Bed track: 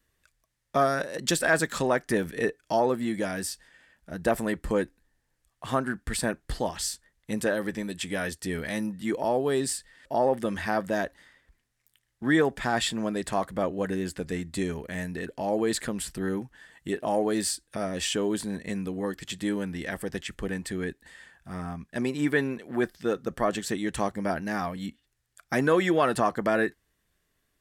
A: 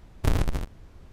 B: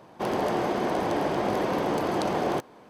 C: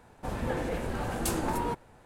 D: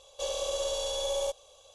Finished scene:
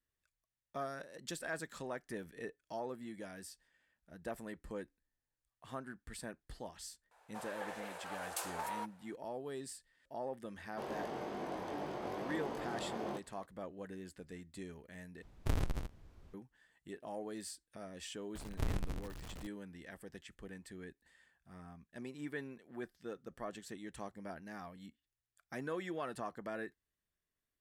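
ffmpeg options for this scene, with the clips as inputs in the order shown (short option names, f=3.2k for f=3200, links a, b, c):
-filter_complex "[1:a]asplit=2[a][b];[0:a]volume=-18dB[c];[3:a]highpass=f=590:w=0.5412,highpass=f=590:w=1.3066[d];[2:a]flanger=delay=20:depth=2:speed=2.4[e];[b]aeval=exprs='val(0)+0.5*0.0335*sgn(val(0))':c=same[f];[c]asplit=2[g][h];[g]atrim=end=15.224[i];[a]atrim=end=1.12,asetpts=PTS-STARTPTS,volume=-10.5dB[j];[h]atrim=start=16.336[k];[d]atrim=end=2.05,asetpts=PTS-STARTPTS,volume=-7.5dB,afade=t=in:d=0.004:c=hsin,afade=t=out:st=2.046:d=0.004:c=hsin,adelay=7110[l];[e]atrim=end=2.89,asetpts=PTS-STARTPTS,volume=-12.5dB,afade=t=in:d=0.004:c=hsin,afade=t=out:st=2.886:d=0.004:c=hsin,adelay=10570[m];[f]atrim=end=1.12,asetpts=PTS-STARTPTS,volume=-14dB,afade=t=in:d=0.004:c=hsin,afade=t=out:st=1.116:d=0.004:c=hsin,adelay=18350[n];[i][j]acrossfade=d=0.004:c1=hsin:c2=hsin[o];[o][k]acrossfade=d=0.004:c1=hsin:c2=hsin[p];[p][l][m][n]amix=inputs=4:normalize=0"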